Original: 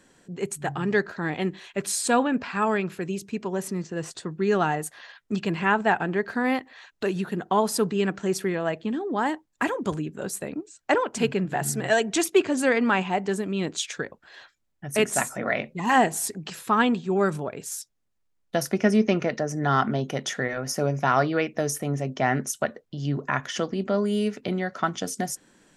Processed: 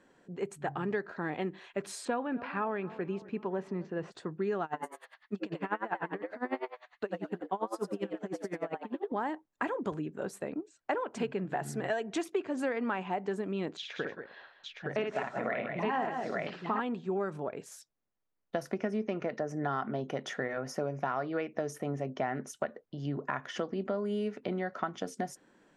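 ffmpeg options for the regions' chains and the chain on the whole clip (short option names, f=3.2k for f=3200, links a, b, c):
-filter_complex "[0:a]asettb=1/sr,asplit=3[a][b][c];[a]atrim=end=2.054[d];[b]atrim=start=2.05:end=4.12,asetpts=PTS-STARTPTS,afade=t=in:d=0.004:c=qsin,afade=t=out:st=2.066:d=0.004:c=qsin,lowpass=3.7k,asplit=2[e][f];[f]adelay=257,lowpass=f=2k:p=1,volume=-21dB,asplit=2[g][h];[h]adelay=257,lowpass=f=2k:p=1,volume=0.53,asplit=2[i][j];[j]adelay=257,lowpass=f=2k:p=1,volume=0.53,asplit=2[k][l];[l]adelay=257,lowpass=f=2k:p=1,volume=0.53[m];[e][g][i][k][m]amix=inputs=5:normalize=0,atrim=end_sample=91287[n];[c]atrim=start=4.116[o];[d][n]acrossfade=d=0.004:c1=hsin:c2=qsin[p];[p][o]acrossfade=d=0.004:c1=qsin:c2=hsin,asettb=1/sr,asplit=3[q][r][s];[q]atrim=end=4.644[t];[r]atrim=start=4.64:end=9.12,asetpts=PTS-STARTPTS,afade=t=in:d=0.004:c=qsin,afade=t=out:st=4.476:d=0.004:c=qsin,asplit=5[u][v][w][x][y];[v]adelay=87,afreqshift=120,volume=-4dB[z];[w]adelay=174,afreqshift=240,volume=-13.9dB[aa];[x]adelay=261,afreqshift=360,volume=-23.8dB[ab];[y]adelay=348,afreqshift=480,volume=-33.7dB[ac];[u][z][aa][ab][ac]amix=inputs=5:normalize=0,atrim=end_sample=197568,aeval=exprs='val(0)*pow(10,-27*(0.5-0.5*cos(2*PI*10*n/s))/20)':c=same[ad];[s]atrim=start=9.116[ae];[t][ad]acrossfade=d=0.004:c1=hsin:c2=qsin[af];[af][ae]acrossfade=d=0.004:c1=qsin:c2=hsin,asettb=1/sr,asplit=3[ag][ah][ai];[ag]atrim=end=13.774[aj];[ah]atrim=start=13.77:end=16.8,asetpts=PTS-STARTPTS,afade=t=in:d=0.004:c=qsin,afade=t=out:st=3.026:d=0.004:c=qsin,lowpass=f=4.7k:w=0.5412,lowpass=f=4.7k:w=1.3066,aecho=1:1:57|172|189|865:0.562|0.158|0.316|0.668,atrim=end_sample=133623[ak];[ai]atrim=start=16.796[al];[aj][ak]acrossfade=d=0.004:c1=hsin:c2=qsin[am];[am][al]acrossfade=d=0.004:c1=qsin:c2=hsin,lowpass=f=1.1k:p=1,lowshelf=f=210:g=-12,acompressor=threshold=-29dB:ratio=6"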